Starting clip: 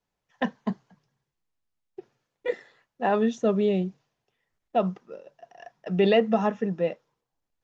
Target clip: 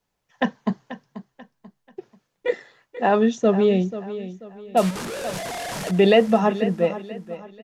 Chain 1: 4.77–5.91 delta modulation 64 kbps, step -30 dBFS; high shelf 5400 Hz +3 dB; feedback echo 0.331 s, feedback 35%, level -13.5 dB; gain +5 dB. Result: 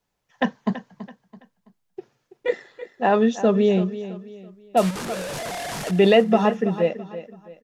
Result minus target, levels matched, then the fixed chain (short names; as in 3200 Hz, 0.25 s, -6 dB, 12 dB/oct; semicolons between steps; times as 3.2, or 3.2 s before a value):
echo 0.156 s early
4.77–5.91 delta modulation 64 kbps, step -30 dBFS; high shelf 5400 Hz +3 dB; feedback echo 0.487 s, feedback 35%, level -13.5 dB; gain +5 dB